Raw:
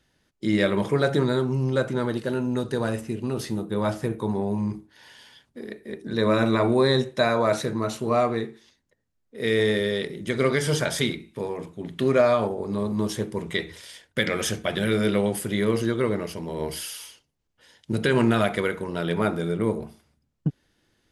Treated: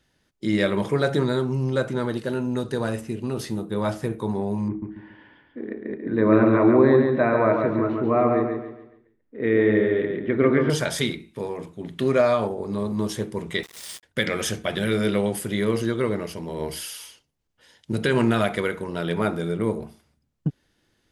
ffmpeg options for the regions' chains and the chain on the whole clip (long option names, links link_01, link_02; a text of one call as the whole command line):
ffmpeg -i in.wav -filter_complex "[0:a]asettb=1/sr,asplit=3[link_01][link_02][link_03];[link_01]atrim=end=4.684[link_04];[link_02]atrim=start=4.68:end=10.7,asetpts=PTS-STARTPTS,afade=type=in:duration=0.004:curve=qsin,afade=type=out:start_time=6.016:duration=0.004:curve=qsin,lowpass=frequency=2200:width=0.5412,lowpass=frequency=2200:width=1.3066,equalizer=frequency=300:width=3.5:gain=11.5,aecho=1:1:140|280|420|560|700:0.596|0.214|0.0772|0.0278|0.01,atrim=end_sample=265482[link_05];[link_03]atrim=start=10.696[link_06];[link_04][link_05]acrossfade=duration=0.004:curve1=hsin:curve2=qsin[link_07];[link_07][link_06]acrossfade=duration=0.004:curve1=qsin:curve2=hsin,asettb=1/sr,asplit=3[link_08][link_09][link_10];[link_08]atrim=end=13.634[link_11];[link_09]atrim=start=13.63:end=14.03,asetpts=PTS-STARTPTS,afade=type=in:duration=0.004:curve=qsin,afade=type=out:start_time=0.396:duration=0.004:curve=qsin,highpass=370,equalizer=frequency=8900:width=0.51:gain=11.5,aeval=exprs='val(0)*gte(abs(val(0)),0.015)':channel_layout=same[link_12];[link_10]atrim=start=14.026[link_13];[link_11][link_12]acrossfade=duration=0.004:curve1=hsin:curve2=qsin[link_14];[link_14][link_13]acrossfade=duration=0.004:curve1=qsin:curve2=hsin" out.wav